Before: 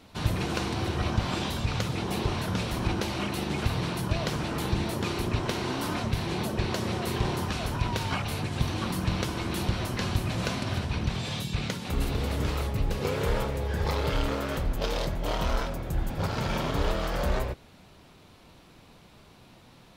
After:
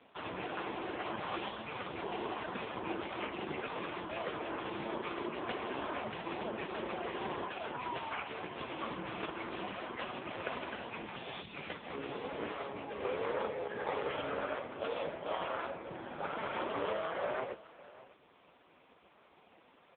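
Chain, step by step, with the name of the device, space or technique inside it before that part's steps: satellite phone (BPF 370–3100 Hz; echo 0.601 s -19 dB; AMR-NB 4.75 kbps 8000 Hz)

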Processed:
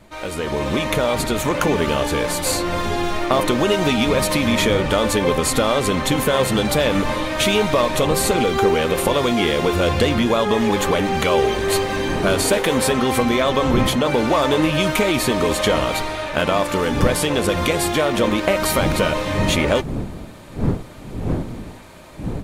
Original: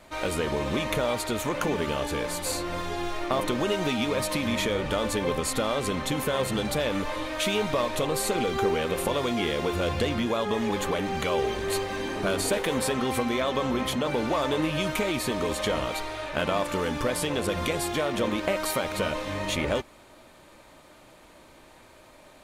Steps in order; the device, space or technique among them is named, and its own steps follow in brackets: smartphone video outdoors (wind noise -39 dBFS; AGC gain up to 9.5 dB; AAC 96 kbps 48000 Hz)

